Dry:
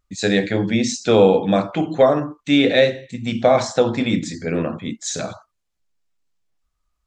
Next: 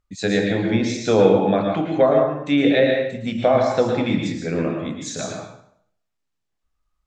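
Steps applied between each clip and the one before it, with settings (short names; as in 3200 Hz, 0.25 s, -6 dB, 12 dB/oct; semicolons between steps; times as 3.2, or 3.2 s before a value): high shelf 5000 Hz -5.5 dB; treble ducked by the level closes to 2500 Hz, closed at -10.5 dBFS; reverb RT60 0.65 s, pre-delay 0.103 s, DRR 1.5 dB; gain -2.5 dB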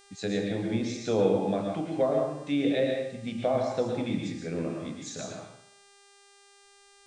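dynamic EQ 1600 Hz, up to -6 dB, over -35 dBFS, Q 0.96; buzz 400 Hz, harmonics 24, -49 dBFS -2 dB/oct; gain -9 dB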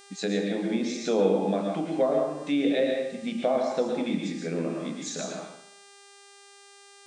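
in parallel at -1 dB: compressor, threshold -36 dBFS, peak gain reduction 16 dB; on the sum: brick-wall FIR high-pass 150 Hz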